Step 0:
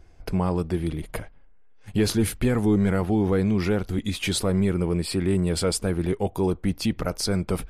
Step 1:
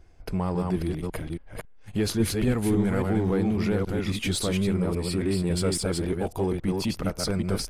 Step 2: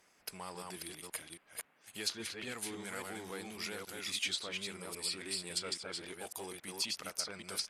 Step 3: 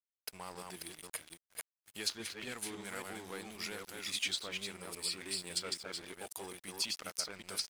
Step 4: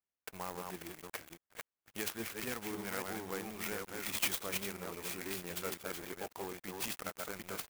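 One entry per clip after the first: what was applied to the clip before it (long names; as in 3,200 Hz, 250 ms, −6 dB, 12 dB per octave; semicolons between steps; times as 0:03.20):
delay that plays each chunk backwards 275 ms, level −3 dB; in parallel at −9.5 dB: gain into a clipping stage and back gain 25.5 dB; on the sum: level −5 dB
first difference; treble cut that deepens with the level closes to 2,200 Hz, closed at −30 dBFS; noise in a band 150–2,400 Hz −77 dBFS; level +5.5 dB
dead-zone distortion −54 dBFS; level +1 dB
low-pass filter 3,500 Hz 24 dB per octave; converter with an unsteady clock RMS 0.067 ms; level +4.5 dB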